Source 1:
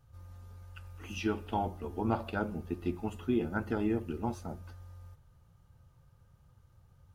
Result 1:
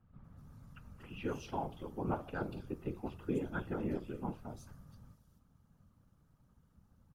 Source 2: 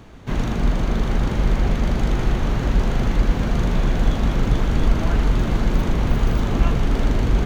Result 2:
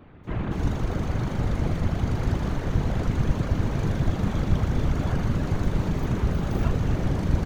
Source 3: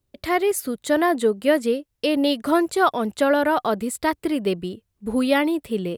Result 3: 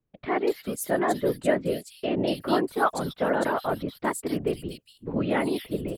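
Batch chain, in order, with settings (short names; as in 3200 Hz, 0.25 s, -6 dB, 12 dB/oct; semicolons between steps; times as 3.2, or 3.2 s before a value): bands offset in time lows, highs 0.24 s, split 3100 Hz; whisperiser; gain -5.5 dB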